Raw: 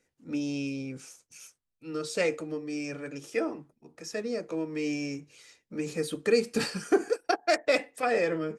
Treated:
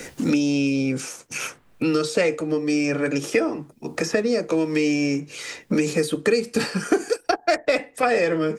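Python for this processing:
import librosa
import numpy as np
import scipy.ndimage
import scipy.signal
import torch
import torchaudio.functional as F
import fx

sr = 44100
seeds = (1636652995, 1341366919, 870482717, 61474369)

y = fx.band_squash(x, sr, depth_pct=100)
y = y * librosa.db_to_amplitude(7.5)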